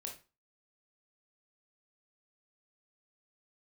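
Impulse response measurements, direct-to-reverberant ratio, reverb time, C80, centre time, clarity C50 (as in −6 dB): 0.5 dB, 0.30 s, 15.0 dB, 21 ms, 8.0 dB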